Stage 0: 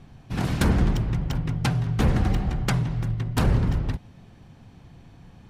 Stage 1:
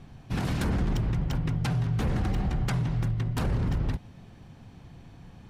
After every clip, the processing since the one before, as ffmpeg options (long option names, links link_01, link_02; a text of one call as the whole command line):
ffmpeg -i in.wav -af "alimiter=limit=-20dB:level=0:latency=1:release=34" out.wav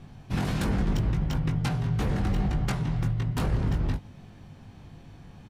ffmpeg -i in.wav -filter_complex "[0:a]asplit=2[link_01][link_02];[link_02]adelay=20,volume=-5.5dB[link_03];[link_01][link_03]amix=inputs=2:normalize=0" out.wav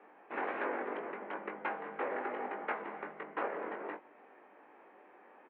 ffmpeg -i in.wav -af "highpass=frequency=360:width_type=q:width=0.5412,highpass=frequency=360:width_type=q:width=1.307,lowpass=frequency=2200:width_type=q:width=0.5176,lowpass=frequency=2200:width_type=q:width=0.7071,lowpass=frequency=2200:width_type=q:width=1.932,afreqshift=51" out.wav